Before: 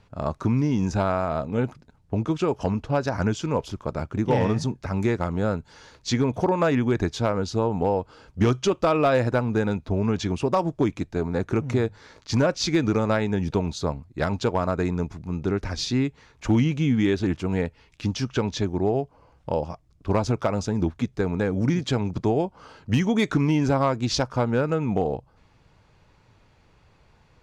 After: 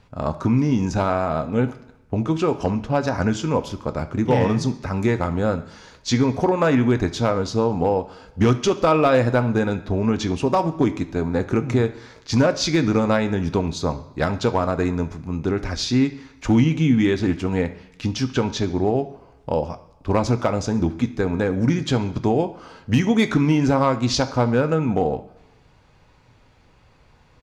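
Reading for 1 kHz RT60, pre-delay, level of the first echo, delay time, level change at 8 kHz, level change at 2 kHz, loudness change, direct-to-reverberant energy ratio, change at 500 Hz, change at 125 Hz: 0.95 s, 3 ms, −20.0 dB, 69 ms, +3.5 dB, +3.5 dB, +3.5 dB, 8.0 dB, +3.0 dB, +2.5 dB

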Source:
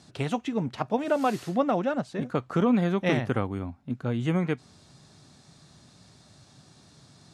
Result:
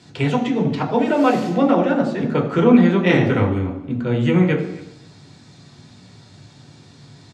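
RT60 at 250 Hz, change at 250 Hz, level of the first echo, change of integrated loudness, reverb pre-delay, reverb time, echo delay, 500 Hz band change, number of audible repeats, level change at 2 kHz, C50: 0.90 s, +10.5 dB, −20.5 dB, +10.0 dB, 3 ms, 0.90 s, 269 ms, +9.0 dB, 1, +10.0 dB, 8.0 dB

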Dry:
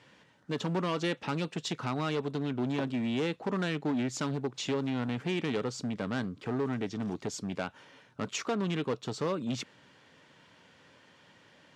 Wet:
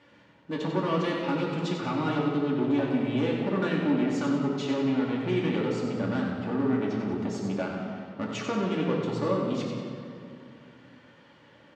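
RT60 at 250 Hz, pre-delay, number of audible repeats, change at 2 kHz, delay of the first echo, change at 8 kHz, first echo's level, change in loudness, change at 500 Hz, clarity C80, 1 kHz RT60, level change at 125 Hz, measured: 3.0 s, 3 ms, 1, +2.5 dB, 93 ms, can't be measured, −6.0 dB, +5.0 dB, +5.0 dB, 2.0 dB, 2.3 s, +3.5 dB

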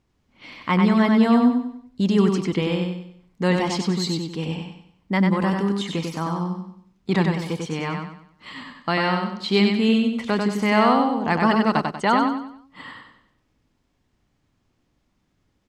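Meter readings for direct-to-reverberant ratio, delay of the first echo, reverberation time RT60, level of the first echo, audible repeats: no reverb audible, 95 ms, no reverb audible, −4.0 dB, 4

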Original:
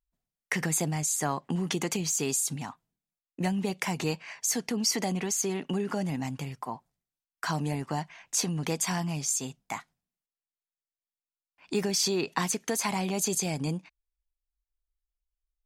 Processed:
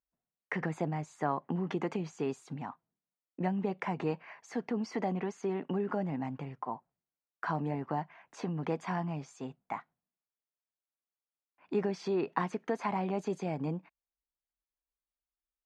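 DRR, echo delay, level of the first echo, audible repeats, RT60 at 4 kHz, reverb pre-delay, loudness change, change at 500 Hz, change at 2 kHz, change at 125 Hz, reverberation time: no reverb audible, no echo audible, no echo audible, no echo audible, no reverb audible, no reverb audible, −6.0 dB, −1.0 dB, −6.5 dB, −4.5 dB, no reverb audible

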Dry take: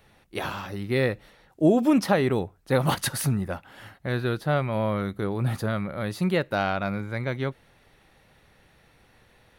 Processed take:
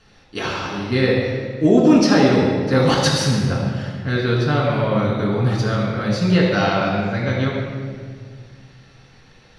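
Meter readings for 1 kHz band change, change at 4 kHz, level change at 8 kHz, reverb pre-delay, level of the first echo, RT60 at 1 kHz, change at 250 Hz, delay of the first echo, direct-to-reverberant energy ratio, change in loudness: +6.5 dB, +11.0 dB, +6.0 dB, 4 ms, no echo audible, 1.7 s, +8.5 dB, no echo audible, −4.0 dB, +8.0 dB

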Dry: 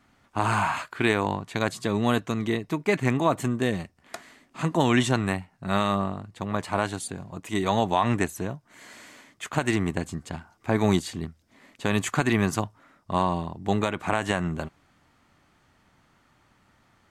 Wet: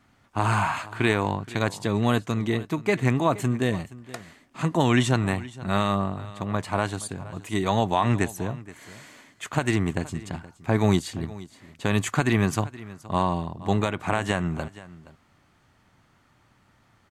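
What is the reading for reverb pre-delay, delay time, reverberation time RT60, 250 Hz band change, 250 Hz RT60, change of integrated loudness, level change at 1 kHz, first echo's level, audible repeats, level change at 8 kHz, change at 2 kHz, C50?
no reverb audible, 472 ms, no reverb audible, +0.5 dB, no reverb audible, +1.0 dB, 0.0 dB, −18.5 dB, 1, 0.0 dB, 0.0 dB, no reverb audible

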